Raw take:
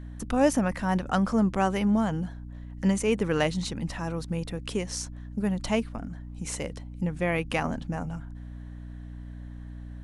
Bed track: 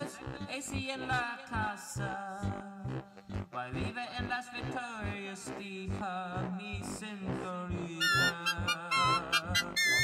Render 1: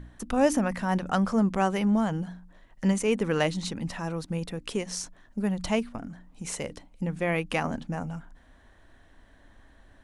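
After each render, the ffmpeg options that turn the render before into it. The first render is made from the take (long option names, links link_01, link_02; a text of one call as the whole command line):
ffmpeg -i in.wav -af "bandreject=frequency=60:width_type=h:width=4,bandreject=frequency=120:width_type=h:width=4,bandreject=frequency=180:width_type=h:width=4,bandreject=frequency=240:width_type=h:width=4,bandreject=frequency=300:width_type=h:width=4" out.wav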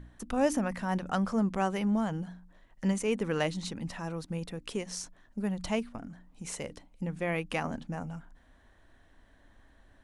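ffmpeg -i in.wav -af "volume=-4.5dB" out.wav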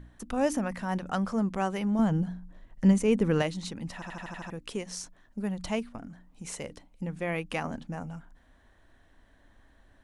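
ffmpeg -i in.wav -filter_complex "[0:a]asettb=1/sr,asplit=3[link_01][link_02][link_03];[link_01]atrim=end=1.994[link_04];[link_02]atrim=start=1.99:end=3.42,asetpts=PTS-STARTPTS,afade=type=in:duration=0.004:curve=qsin,afade=type=out:start_time=1.426:duration=0.004:curve=qsin,lowshelf=frequency=400:gain=10[link_05];[link_03]atrim=start=3.416[link_06];[link_04][link_05]acrossfade=duration=0.004:curve1=hsin:curve2=qsin[link_07];[link_07][link_06]acrossfade=duration=0.004:curve1=qsin:curve2=hsin,asplit=8[link_08][link_09][link_10][link_11][link_12][link_13][link_14][link_15];[link_08]atrim=end=4.022[link_16];[link_09]atrim=start=3.938:end=4.022[link_17];[link_10]atrim=start=3.938:end=4.022[link_18];[link_11]atrim=start=3.938:end=4.022[link_19];[link_12]atrim=start=3.938:end=4.022[link_20];[link_13]atrim=start=3.938:end=4.022[link_21];[link_14]atrim=start=3.938:end=4.022[link_22];[link_15]atrim=start=4.498[link_23];[link_16][link_17]acrossfade=duration=0.004:curve1=hsin:curve2=hsin[link_24];[link_24][link_18]acrossfade=duration=0.004:curve1=hsin:curve2=hsin[link_25];[link_25][link_19]acrossfade=duration=0.004:curve1=hsin:curve2=hsin[link_26];[link_26][link_20]acrossfade=duration=0.004:curve1=hsin:curve2=hsin[link_27];[link_27][link_21]acrossfade=duration=0.004:curve1=hsin:curve2=hsin[link_28];[link_28][link_22]acrossfade=duration=0.004:curve1=hsin:curve2=hsin[link_29];[link_29][link_23]acrossfade=duration=0.004:curve1=hsin:curve2=hsin" out.wav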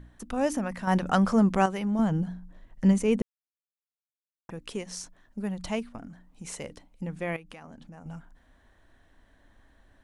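ffmpeg -i in.wav -filter_complex "[0:a]asettb=1/sr,asplit=3[link_01][link_02][link_03];[link_01]atrim=end=0.874[link_04];[link_02]atrim=start=0.87:end=1.66,asetpts=PTS-STARTPTS,afade=type=in:duration=0.004:curve=qsin,afade=type=out:start_time=0.786:duration=0.004:curve=qsin,acontrast=78[link_05];[link_03]atrim=start=1.656[link_06];[link_04][link_05]acrossfade=duration=0.004:curve1=hsin:curve2=qsin[link_07];[link_07][link_06]acrossfade=duration=0.004:curve1=qsin:curve2=hsin,asettb=1/sr,asplit=3[link_08][link_09][link_10];[link_08]atrim=end=7.364[link_11];[link_09]atrim=start=7.36:end=8.06,asetpts=PTS-STARTPTS,afade=type=in:duration=0.004:curve=qsin,afade=type=out:start_time=0.696:duration=0.004:curve=qsin,acompressor=threshold=-43dB:ratio=6:attack=3.2:release=140:knee=1:detection=peak[link_12];[link_10]atrim=start=8.056[link_13];[link_11][link_12]acrossfade=duration=0.004:curve1=hsin:curve2=qsin[link_14];[link_14][link_13]acrossfade=duration=0.004:curve1=qsin:curve2=hsin,asplit=3[link_15][link_16][link_17];[link_15]atrim=end=3.22,asetpts=PTS-STARTPTS,afade=type=out:start_time=3.216:duration=0.004:curve=hsin[link_18];[link_16]atrim=start=3.22:end=4.49,asetpts=PTS-STARTPTS,volume=0[link_19];[link_17]atrim=start=4.49,asetpts=PTS-STARTPTS,afade=type=in:duration=0.004:curve=hsin[link_20];[link_18][link_19][link_20]concat=n=3:v=0:a=1" out.wav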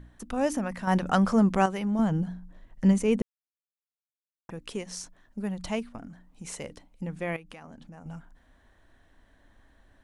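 ffmpeg -i in.wav -af anull out.wav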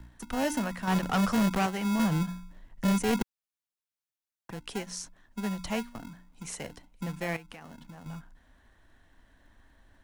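ffmpeg -i in.wav -filter_complex "[0:a]acrossover=split=140|510|3400[link_01][link_02][link_03][link_04];[link_02]acrusher=samples=37:mix=1:aa=0.000001[link_05];[link_01][link_05][link_03][link_04]amix=inputs=4:normalize=0,volume=22dB,asoftclip=hard,volume=-22dB" out.wav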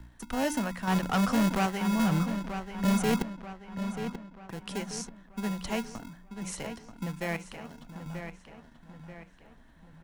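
ffmpeg -i in.wav -filter_complex "[0:a]asplit=2[link_01][link_02];[link_02]adelay=935,lowpass=frequency=4200:poles=1,volume=-8.5dB,asplit=2[link_03][link_04];[link_04]adelay=935,lowpass=frequency=4200:poles=1,volume=0.47,asplit=2[link_05][link_06];[link_06]adelay=935,lowpass=frequency=4200:poles=1,volume=0.47,asplit=2[link_07][link_08];[link_08]adelay=935,lowpass=frequency=4200:poles=1,volume=0.47,asplit=2[link_09][link_10];[link_10]adelay=935,lowpass=frequency=4200:poles=1,volume=0.47[link_11];[link_01][link_03][link_05][link_07][link_09][link_11]amix=inputs=6:normalize=0" out.wav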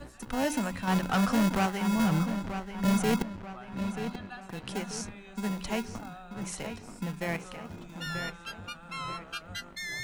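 ffmpeg -i in.wav -i bed.wav -filter_complex "[1:a]volume=-9dB[link_01];[0:a][link_01]amix=inputs=2:normalize=0" out.wav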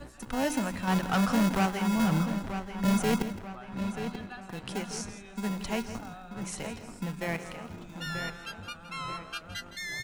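ffmpeg -i in.wav -af "aecho=1:1:164|328:0.211|0.0338" out.wav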